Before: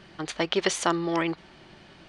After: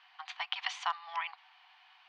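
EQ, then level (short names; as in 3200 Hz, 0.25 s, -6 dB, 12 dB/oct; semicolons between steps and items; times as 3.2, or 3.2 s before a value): rippled Chebyshev high-pass 720 Hz, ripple 6 dB; air absorption 180 m; -2.0 dB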